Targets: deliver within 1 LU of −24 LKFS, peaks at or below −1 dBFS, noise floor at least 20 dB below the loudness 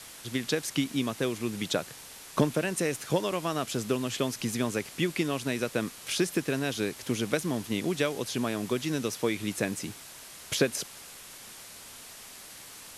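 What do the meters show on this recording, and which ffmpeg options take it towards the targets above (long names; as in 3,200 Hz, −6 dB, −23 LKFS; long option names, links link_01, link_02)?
background noise floor −47 dBFS; target noise floor −51 dBFS; integrated loudness −30.5 LKFS; sample peak −10.5 dBFS; target loudness −24.0 LKFS
→ -af "afftdn=noise_reduction=6:noise_floor=-47"
-af "volume=6.5dB"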